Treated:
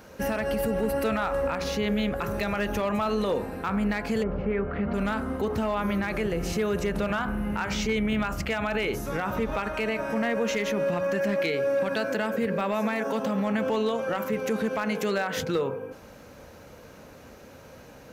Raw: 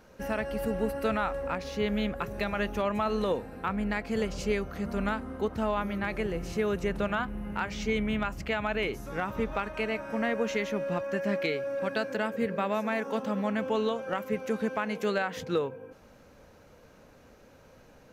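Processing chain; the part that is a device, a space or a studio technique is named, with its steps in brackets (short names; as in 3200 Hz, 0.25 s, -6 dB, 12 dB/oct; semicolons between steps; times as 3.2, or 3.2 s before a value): HPF 45 Hz; de-hum 60.5 Hz, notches 28; clipper into limiter (hard clip -21 dBFS, distortion -25 dB; limiter -27.5 dBFS, peak gain reduction 6.5 dB); 4.22–4.93 LPF 1400 Hz -> 3100 Hz 24 dB/oct; high shelf 11000 Hz +5.5 dB; gain +8.5 dB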